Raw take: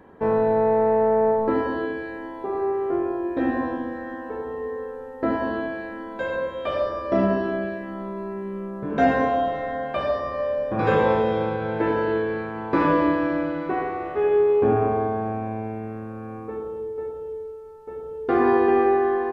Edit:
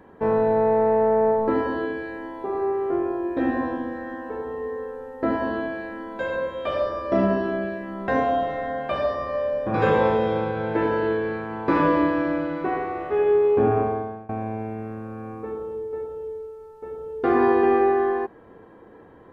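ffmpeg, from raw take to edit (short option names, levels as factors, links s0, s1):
-filter_complex "[0:a]asplit=3[s0][s1][s2];[s0]atrim=end=8.082[s3];[s1]atrim=start=9.128:end=15.34,asetpts=PTS-STARTPTS,afade=t=out:st=5.722:d=0.49:silence=0.0794328[s4];[s2]atrim=start=15.34,asetpts=PTS-STARTPTS,afade=t=in:d=0.004:c=hsin:silence=0.0794328[s5];[s4][s5]concat=n=2:v=0:a=1[s6];[s3][s6]acrossfade=d=0.004:c1=hsin:c2=hsin"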